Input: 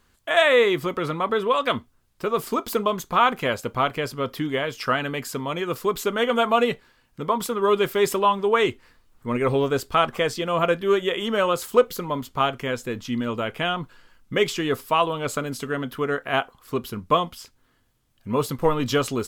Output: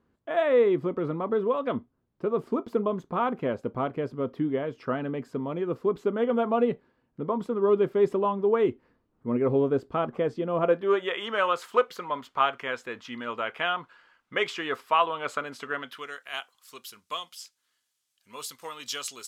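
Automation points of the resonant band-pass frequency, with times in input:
resonant band-pass, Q 0.77
0:10.50 280 Hz
0:11.15 1,400 Hz
0:15.73 1,400 Hz
0:16.16 6,700 Hz

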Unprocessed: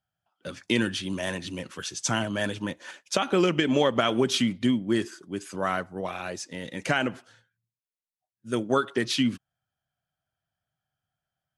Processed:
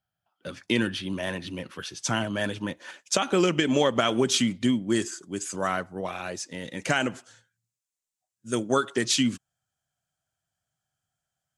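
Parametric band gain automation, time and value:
parametric band 7,300 Hz 0.81 octaves
−3 dB
from 0:00.87 −9 dB
from 0:02.02 −2.5 dB
from 0:02.99 +8 dB
from 0:04.90 +14 dB
from 0:05.67 +3 dB
from 0:06.90 +12.5 dB

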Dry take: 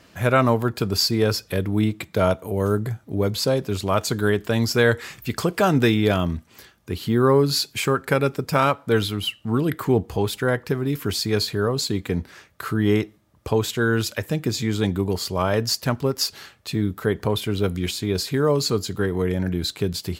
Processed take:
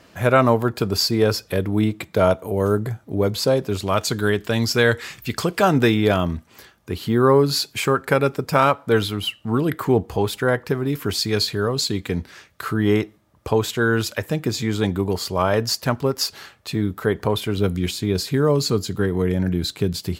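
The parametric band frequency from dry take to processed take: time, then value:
parametric band +3.5 dB 2.3 octaves
630 Hz
from 0:03.84 3,600 Hz
from 0:05.63 830 Hz
from 0:11.18 4,000 Hz
from 0:12.65 900 Hz
from 0:17.57 160 Hz

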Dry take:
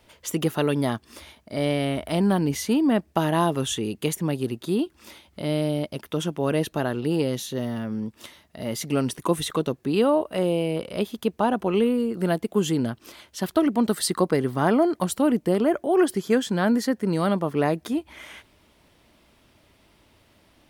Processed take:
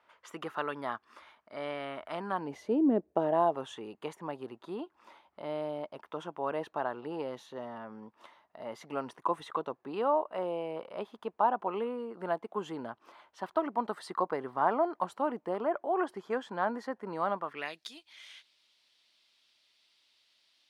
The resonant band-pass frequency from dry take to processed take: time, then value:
resonant band-pass, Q 2.2
0:02.31 1,200 Hz
0:02.90 360 Hz
0:03.70 950 Hz
0:17.33 950 Hz
0:17.80 4,200 Hz

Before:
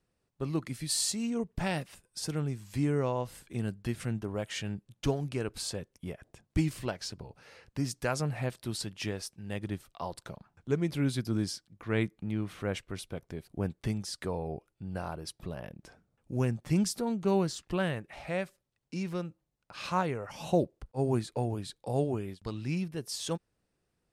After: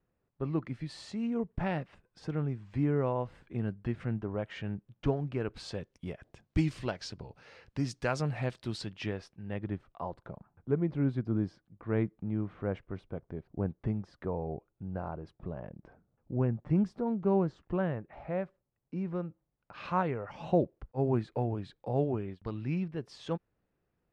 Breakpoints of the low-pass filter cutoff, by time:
0:05.31 1,900 Hz
0:05.90 4,900 Hz
0:08.69 4,900 Hz
0:09.17 2,500 Hz
0:10.29 1,200 Hz
0:19.03 1,200 Hz
0:19.76 2,200 Hz

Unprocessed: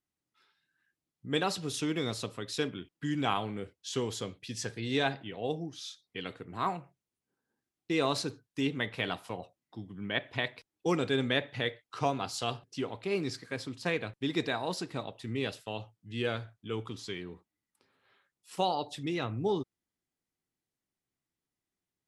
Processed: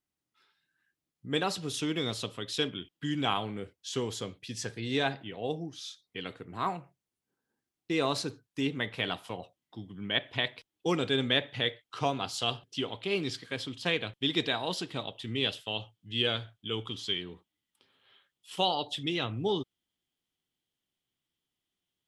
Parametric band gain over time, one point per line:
parametric band 3,200 Hz 0.42 octaves
0:01.52 +1.5 dB
0:02.27 +9.5 dB
0:02.92 +9.5 dB
0:03.63 +1.5 dB
0:08.81 +1.5 dB
0:09.32 +8 dB
0:12.39 +8 dB
0:12.88 +15 dB

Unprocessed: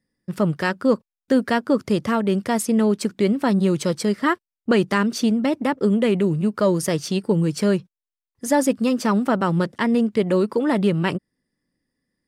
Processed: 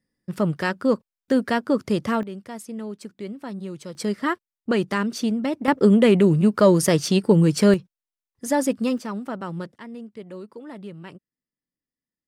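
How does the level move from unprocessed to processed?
−2 dB
from 0:02.23 −14.5 dB
from 0:03.95 −4 dB
from 0:05.68 +3.5 dB
from 0:07.74 −3 dB
from 0:08.98 −11 dB
from 0:09.76 −18.5 dB

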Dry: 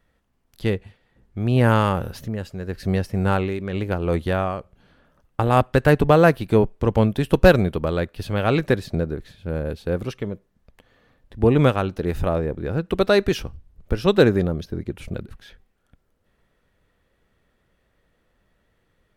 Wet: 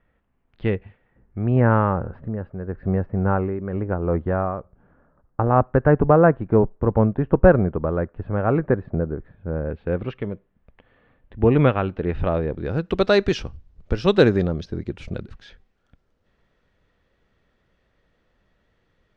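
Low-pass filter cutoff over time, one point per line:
low-pass filter 24 dB per octave
0:00.74 2,700 Hz
0:02.01 1,500 Hz
0:09.52 1,500 Hz
0:10.01 2,900 Hz
0:12.11 2,900 Hz
0:12.75 6,300 Hz

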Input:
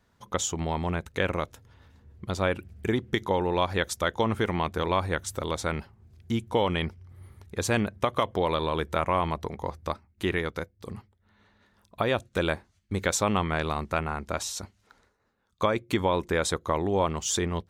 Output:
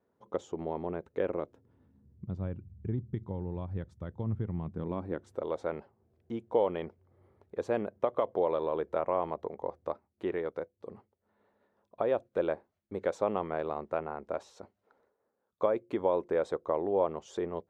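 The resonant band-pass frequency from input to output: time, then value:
resonant band-pass, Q 1.6
0:01.33 430 Hz
0:02.46 120 Hz
0:04.56 120 Hz
0:05.44 520 Hz

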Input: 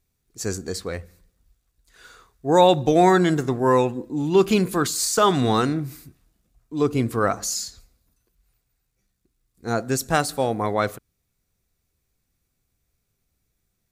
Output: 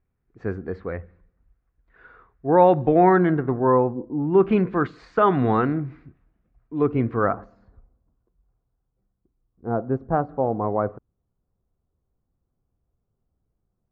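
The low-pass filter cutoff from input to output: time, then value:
low-pass filter 24 dB per octave
0:03.40 1,900 Hz
0:04.04 1,000 Hz
0:04.52 2,100 Hz
0:07.13 2,100 Hz
0:07.57 1,100 Hz

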